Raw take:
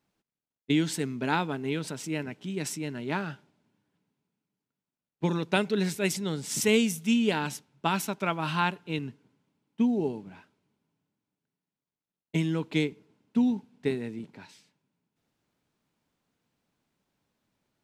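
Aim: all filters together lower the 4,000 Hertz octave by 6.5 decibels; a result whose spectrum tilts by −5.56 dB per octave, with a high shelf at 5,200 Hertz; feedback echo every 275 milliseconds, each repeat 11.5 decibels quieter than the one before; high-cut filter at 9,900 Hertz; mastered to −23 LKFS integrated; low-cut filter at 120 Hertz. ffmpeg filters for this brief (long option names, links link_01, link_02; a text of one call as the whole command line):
ffmpeg -i in.wav -af "highpass=120,lowpass=9900,equalizer=frequency=4000:width_type=o:gain=-5.5,highshelf=frequency=5200:gain=-8.5,aecho=1:1:275|550|825:0.266|0.0718|0.0194,volume=7dB" out.wav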